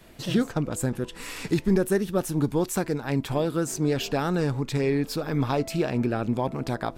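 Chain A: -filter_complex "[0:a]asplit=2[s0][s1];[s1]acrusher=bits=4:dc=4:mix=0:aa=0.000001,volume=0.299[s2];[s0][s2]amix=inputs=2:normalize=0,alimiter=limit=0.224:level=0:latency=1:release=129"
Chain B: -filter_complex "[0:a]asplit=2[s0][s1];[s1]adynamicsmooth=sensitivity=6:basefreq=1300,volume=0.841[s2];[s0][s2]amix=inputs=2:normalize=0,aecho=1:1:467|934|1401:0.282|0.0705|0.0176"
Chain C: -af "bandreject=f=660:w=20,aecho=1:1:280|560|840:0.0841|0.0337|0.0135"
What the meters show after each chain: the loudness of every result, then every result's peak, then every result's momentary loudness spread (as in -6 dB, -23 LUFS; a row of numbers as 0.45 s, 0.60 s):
-26.0 LUFS, -21.0 LUFS, -26.5 LUFS; -13.0 dBFS, -6.0 dBFS, -11.5 dBFS; 4 LU, 5 LU, 5 LU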